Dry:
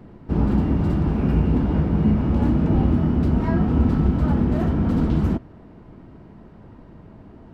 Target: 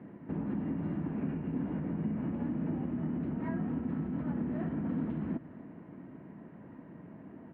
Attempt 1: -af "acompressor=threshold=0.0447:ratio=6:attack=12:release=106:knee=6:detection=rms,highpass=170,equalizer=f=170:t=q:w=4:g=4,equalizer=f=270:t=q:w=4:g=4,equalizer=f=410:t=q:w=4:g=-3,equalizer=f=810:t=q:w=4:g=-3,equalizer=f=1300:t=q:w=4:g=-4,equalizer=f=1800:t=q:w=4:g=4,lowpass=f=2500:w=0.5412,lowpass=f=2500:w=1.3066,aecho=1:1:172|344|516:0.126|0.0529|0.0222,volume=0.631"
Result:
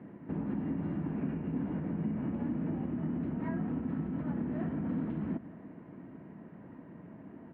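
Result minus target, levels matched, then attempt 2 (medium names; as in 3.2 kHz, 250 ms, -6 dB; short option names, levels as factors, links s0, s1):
echo 73 ms early
-af "acompressor=threshold=0.0447:ratio=6:attack=12:release=106:knee=6:detection=rms,highpass=170,equalizer=f=170:t=q:w=4:g=4,equalizer=f=270:t=q:w=4:g=4,equalizer=f=410:t=q:w=4:g=-3,equalizer=f=810:t=q:w=4:g=-3,equalizer=f=1300:t=q:w=4:g=-4,equalizer=f=1800:t=q:w=4:g=4,lowpass=f=2500:w=0.5412,lowpass=f=2500:w=1.3066,aecho=1:1:245|490|735:0.126|0.0529|0.0222,volume=0.631"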